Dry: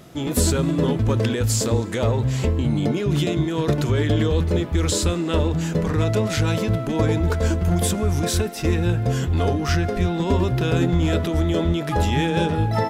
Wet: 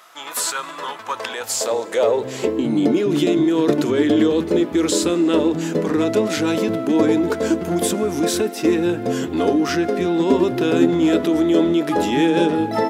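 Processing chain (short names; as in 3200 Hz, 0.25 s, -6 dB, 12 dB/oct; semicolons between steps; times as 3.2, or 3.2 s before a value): high-pass sweep 1100 Hz -> 290 Hz, 0.98–2.71; gain +1.5 dB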